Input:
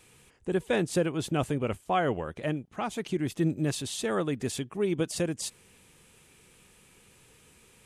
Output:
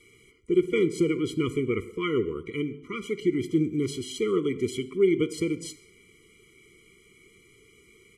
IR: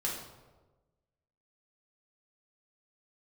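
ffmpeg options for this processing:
-filter_complex "[0:a]equalizer=f=400:t=o:w=0.67:g=10,equalizer=f=1000:t=o:w=0.67:g=-7,equalizer=f=2500:t=o:w=0.67:g=12,asplit=2[s0][s1];[1:a]atrim=start_sample=2205,afade=t=out:st=0.21:d=0.01,atrim=end_sample=9702,asetrate=34839,aresample=44100[s2];[s1][s2]afir=irnorm=-1:irlink=0,volume=0.168[s3];[s0][s3]amix=inputs=2:normalize=0,asetrate=42336,aresample=44100,afftfilt=real='re*eq(mod(floor(b*sr/1024/480),2),0)':imag='im*eq(mod(floor(b*sr/1024/480),2),0)':win_size=1024:overlap=0.75,volume=0.708"

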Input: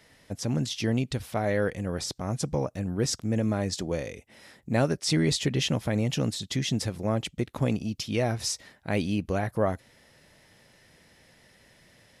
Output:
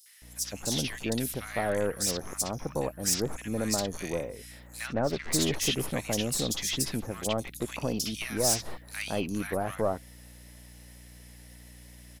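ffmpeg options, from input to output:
-filter_complex "[0:a]aemphasis=mode=production:type=bsi,aeval=exprs='(tanh(11.2*val(0)+0.5)-tanh(0.5))/11.2':c=same,aeval=exprs='val(0)+0.00251*(sin(2*PI*60*n/s)+sin(2*PI*2*60*n/s)/2+sin(2*PI*3*60*n/s)/3+sin(2*PI*4*60*n/s)/4+sin(2*PI*5*60*n/s)/5)':c=same,asplit=3[s0][s1][s2];[s0]afade=t=out:st=4.86:d=0.02[s3];[s1]adynamicsmooth=sensitivity=2.5:basefreq=680,afade=t=in:st=4.86:d=0.02,afade=t=out:st=5.32:d=0.02[s4];[s2]afade=t=in:st=5.32:d=0.02[s5];[s3][s4][s5]amix=inputs=3:normalize=0,acrossover=split=1400|4500[s6][s7][s8];[s7]adelay=60[s9];[s6]adelay=220[s10];[s10][s9][s8]amix=inputs=3:normalize=0,volume=1.33"

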